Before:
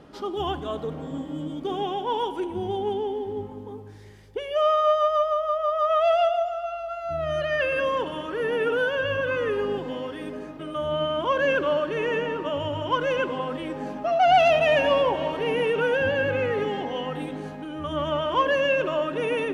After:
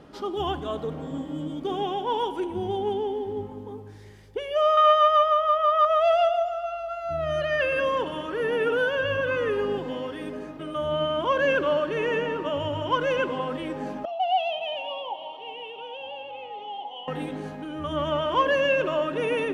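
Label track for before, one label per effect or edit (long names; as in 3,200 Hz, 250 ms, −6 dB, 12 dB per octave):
4.770000	5.850000	flat-topped bell 2,100 Hz +8.5 dB
14.050000	17.080000	pair of resonant band-passes 1,600 Hz, apart 1.9 octaves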